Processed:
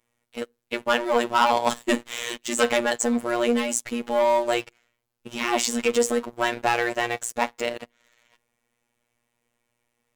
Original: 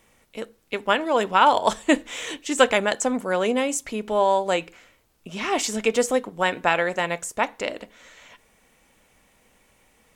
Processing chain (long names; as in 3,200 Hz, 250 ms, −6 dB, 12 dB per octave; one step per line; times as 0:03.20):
leveller curve on the samples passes 3
phases set to zero 119 Hz
level −7.5 dB